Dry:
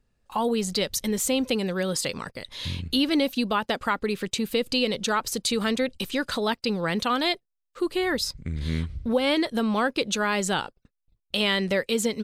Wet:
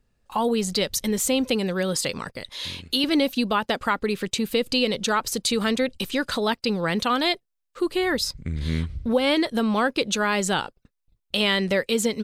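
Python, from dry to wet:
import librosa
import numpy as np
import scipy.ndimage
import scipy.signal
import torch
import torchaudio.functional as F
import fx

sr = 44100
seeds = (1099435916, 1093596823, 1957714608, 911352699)

y = fx.bass_treble(x, sr, bass_db=-13, treble_db=2, at=(2.49, 3.04))
y = F.gain(torch.from_numpy(y), 2.0).numpy()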